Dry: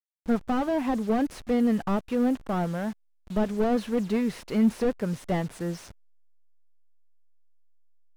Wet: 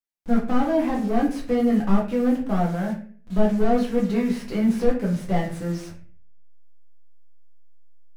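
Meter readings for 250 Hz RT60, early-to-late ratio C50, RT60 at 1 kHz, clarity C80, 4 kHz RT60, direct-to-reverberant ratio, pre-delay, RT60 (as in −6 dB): 0.65 s, 7.5 dB, 0.40 s, 12.0 dB, 0.35 s, −3.5 dB, 4 ms, 0.45 s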